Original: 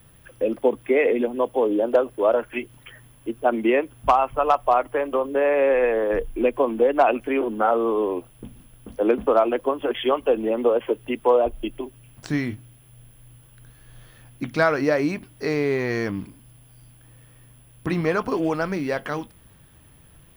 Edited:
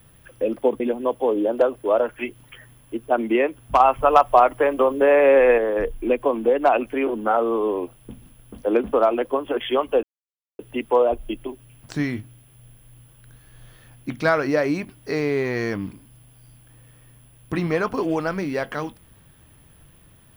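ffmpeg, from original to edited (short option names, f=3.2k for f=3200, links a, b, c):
-filter_complex "[0:a]asplit=6[a][b][c][d][e][f];[a]atrim=end=0.802[g];[b]atrim=start=1.138:end=4.142[h];[c]atrim=start=4.138:end=5.922,asetpts=PTS-STARTPTS,volume=4.5dB[i];[d]atrim=start=5.918:end=10.37,asetpts=PTS-STARTPTS,afade=t=out:st=4.448:d=0.004:c=hsin[j];[e]atrim=start=10.37:end=10.93,asetpts=PTS-STARTPTS,volume=0[k];[f]atrim=start=10.93,asetpts=PTS-STARTPTS,afade=t=in:d=0.004:c=hsin[l];[g][h]acrossfade=d=0.004:c1=hsin:c2=hsin[m];[m][i]acrossfade=d=0.004:c1=hsin:c2=hsin[n];[j][k][l]concat=n=3:v=0:a=1[o];[n][o]acrossfade=d=0.004:c1=hsin:c2=hsin"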